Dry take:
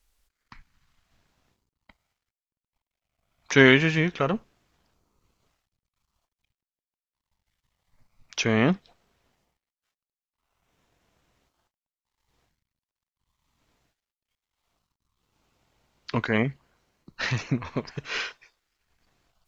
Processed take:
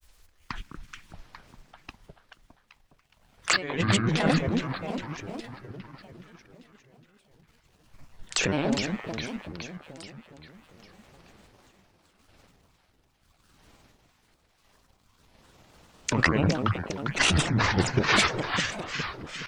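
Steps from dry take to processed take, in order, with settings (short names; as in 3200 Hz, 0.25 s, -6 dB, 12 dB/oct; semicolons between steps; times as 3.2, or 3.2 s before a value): negative-ratio compressor -30 dBFS, ratio -1; dynamic EQ 2700 Hz, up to -4 dB, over -42 dBFS, Q 1.1; on a send: echo with dull and thin repeats by turns 0.205 s, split 850 Hz, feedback 75%, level -3.5 dB; on the sum: grains, grains 20/s, spray 15 ms, pitch spread up and down by 7 st; gain +7 dB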